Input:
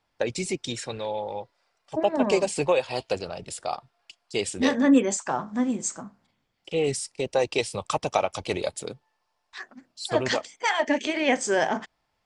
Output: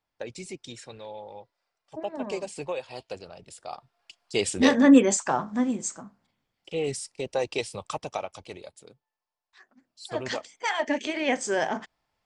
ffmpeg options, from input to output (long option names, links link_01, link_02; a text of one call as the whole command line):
ffmpeg -i in.wav -af "volume=16dB,afade=type=in:start_time=3.63:duration=0.95:silence=0.223872,afade=type=out:start_time=5.14:duration=0.86:silence=0.446684,afade=type=out:start_time=7.57:duration=1.09:silence=0.251189,afade=type=in:start_time=9.6:duration=1.16:silence=0.223872" out.wav